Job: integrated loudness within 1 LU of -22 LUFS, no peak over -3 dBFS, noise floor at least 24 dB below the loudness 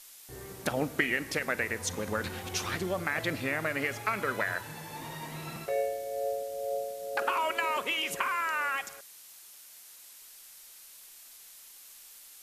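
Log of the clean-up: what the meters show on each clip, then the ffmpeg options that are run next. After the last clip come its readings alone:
noise floor -52 dBFS; noise floor target -56 dBFS; loudness -32.0 LUFS; peak level -12.0 dBFS; loudness target -22.0 LUFS
-> -af "afftdn=nr=6:nf=-52"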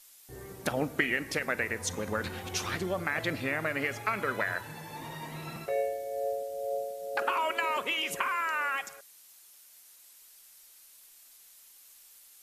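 noise floor -56 dBFS; loudness -32.0 LUFS; peak level -12.0 dBFS; loudness target -22.0 LUFS
-> -af "volume=3.16,alimiter=limit=0.708:level=0:latency=1"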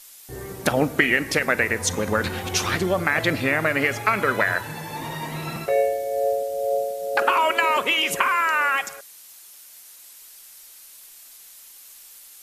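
loudness -22.0 LUFS; peak level -3.0 dBFS; noise floor -46 dBFS

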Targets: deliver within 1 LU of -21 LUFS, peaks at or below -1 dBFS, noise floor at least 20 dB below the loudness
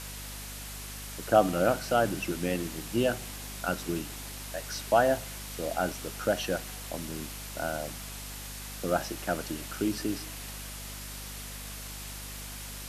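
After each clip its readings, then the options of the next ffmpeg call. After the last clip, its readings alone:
hum 50 Hz; highest harmonic 250 Hz; hum level -42 dBFS; noise floor -41 dBFS; noise floor target -52 dBFS; loudness -32.0 LUFS; peak level -8.5 dBFS; loudness target -21.0 LUFS
-> -af "bandreject=f=50:t=h:w=4,bandreject=f=100:t=h:w=4,bandreject=f=150:t=h:w=4,bandreject=f=200:t=h:w=4,bandreject=f=250:t=h:w=4"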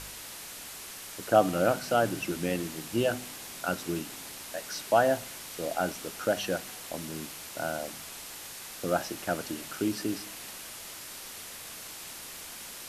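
hum not found; noise floor -44 dBFS; noise floor target -52 dBFS
-> -af "afftdn=nr=8:nf=-44"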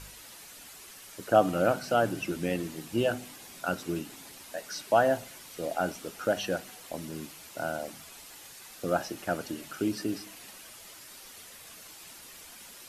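noise floor -49 dBFS; noise floor target -51 dBFS
-> -af "afftdn=nr=6:nf=-49"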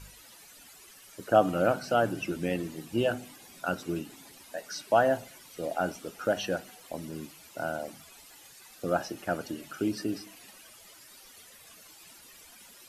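noise floor -53 dBFS; loudness -31.0 LUFS; peak level -8.5 dBFS; loudness target -21.0 LUFS
-> -af "volume=3.16,alimiter=limit=0.891:level=0:latency=1"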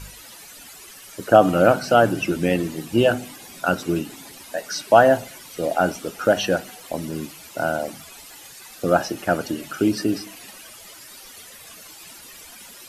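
loudness -21.0 LUFS; peak level -1.0 dBFS; noise floor -43 dBFS

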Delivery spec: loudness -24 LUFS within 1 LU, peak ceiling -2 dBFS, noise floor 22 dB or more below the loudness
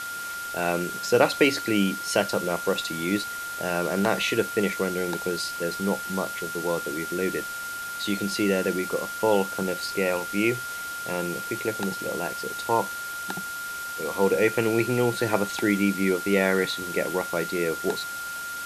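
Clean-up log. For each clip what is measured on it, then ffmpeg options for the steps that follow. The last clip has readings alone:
steady tone 1.4 kHz; tone level -32 dBFS; noise floor -34 dBFS; noise floor target -48 dBFS; loudness -26.0 LUFS; peak level -5.5 dBFS; loudness target -24.0 LUFS
-> -af "bandreject=f=1400:w=30"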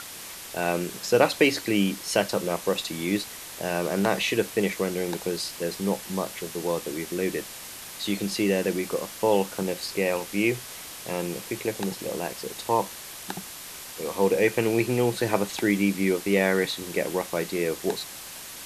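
steady tone not found; noise floor -41 dBFS; noise floor target -49 dBFS
-> -af "afftdn=nr=8:nf=-41"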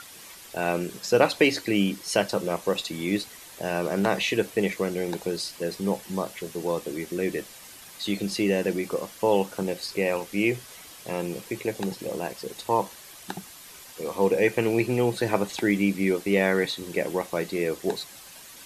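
noise floor -46 dBFS; noise floor target -49 dBFS
-> -af "afftdn=nr=6:nf=-46"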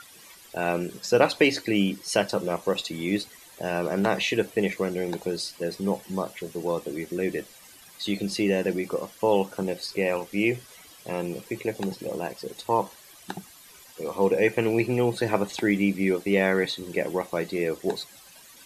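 noise floor -50 dBFS; loudness -27.0 LUFS; peak level -5.5 dBFS; loudness target -24.0 LUFS
-> -af "volume=1.41"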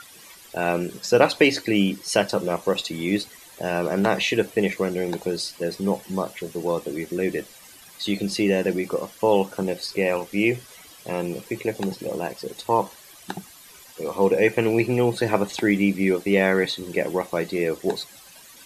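loudness -24.0 LUFS; peak level -2.5 dBFS; noise floor -47 dBFS

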